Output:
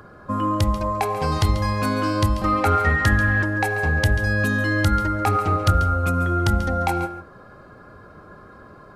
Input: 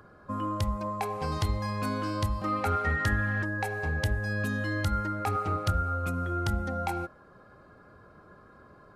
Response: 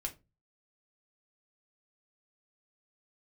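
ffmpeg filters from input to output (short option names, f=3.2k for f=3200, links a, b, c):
-filter_complex "[0:a]asplit=2[a][b];[1:a]atrim=start_sample=2205,adelay=138[c];[b][c]afir=irnorm=-1:irlink=0,volume=-11.5dB[d];[a][d]amix=inputs=2:normalize=0,volume=9dB"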